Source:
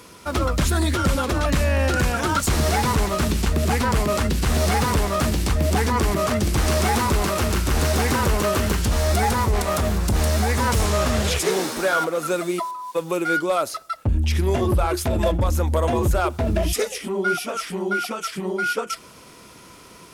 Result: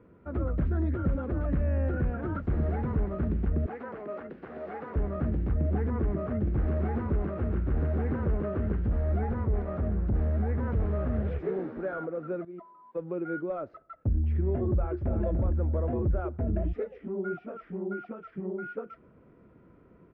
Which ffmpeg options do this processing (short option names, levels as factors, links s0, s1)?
-filter_complex "[0:a]asettb=1/sr,asplit=3[s0][s1][s2];[s0]atrim=end=3.664[s3];[s1]atrim=start=3.66:end=4.96,asetpts=PTS-STARTPTS,afade=t=in:d=0.004:c=qsin,afade=t=out:st=1.296:d=0.004:c=qsin,highpass=460[s4];[s2]atrim=start=4.956[s5];[s3][s4]acrossfade=d=0.004:c1=hsin:c2=qsin[s6];[s6][s5]acrossfade=d=0.004:c1=qsin:c2=hsin,asplit=2[s7][s8];[s8]afade=t=in:st=14.72:d=0.01,afade=t=out:st=15.23:d=0.01,aecho=0:1:290|580|870|1160:0.398107|0.139338|0.0487681|0.0170688[s9];[s7][s9]amix=inputs=2:normalize=0,asplit=2[s10][s11];[s10]atrim=end=12.45,asetpts=PTS-STARTPTS,afade=t=out:st=12.446:d=0.004:c=hsin:silence=0.158489[s12];[s11]atrim=start=12.45,asetpts=PTS-STARTPTS,afade=t=in:d=0.41:silence=0.158489[s13];[s12][s13]concat=n=2:v=0:a=1,lowpass=f=1400:w=0.5412,lowpass=f=1400:w=1.3066,equalizer=f=1000:w=1.2:g=-14.5,volume=0.501"